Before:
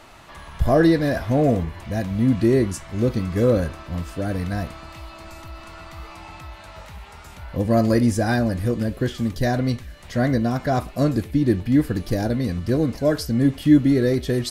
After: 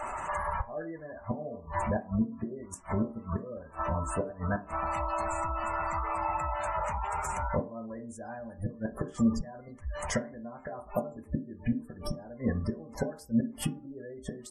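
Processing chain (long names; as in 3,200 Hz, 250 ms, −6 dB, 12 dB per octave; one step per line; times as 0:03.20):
graphic EQ with 10 bands 125 Hz −6 dB, 250 Hz −7 dB, 1,000 Hz +8 dB, 4,000 Hz −9 dB, 8,000 Hz +11 dB
gate with flip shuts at −18 dBFS, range −29 dB
downward compressor 4 to 1, threshold −35 dBFS, peak gain reduction 10 dB
gate on every frequency bin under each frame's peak −20 dB strong
on a send: convolution reverb RT60 0.45 s, pre-delay 3 ms, DRR 4 dB
on the sum: level +6 dB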